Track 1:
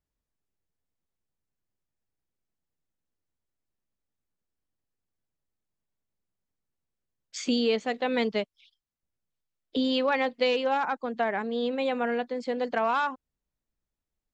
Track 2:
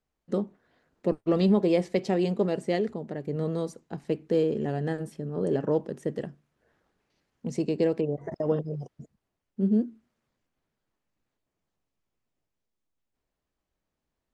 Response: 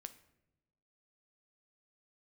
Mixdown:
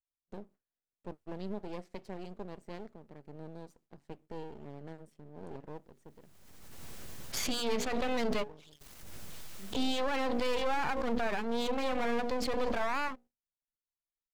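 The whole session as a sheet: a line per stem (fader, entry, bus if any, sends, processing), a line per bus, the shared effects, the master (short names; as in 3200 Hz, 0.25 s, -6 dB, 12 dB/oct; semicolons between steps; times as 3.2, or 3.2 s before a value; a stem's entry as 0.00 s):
+2.5 dB, 0.00 s, no send, notches 60/120/180/240/300/360/420/480/540 Hz; backwards sustainer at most 31 dB/s
-15.0 dB, 0.00 s, no send, auto duck -10 dB, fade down 0.85 s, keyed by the first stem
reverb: off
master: gate with hold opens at -54 dBFS; half-wave rectifier; limiter -21.5 dBFS, peak gain reduction 10.5 dB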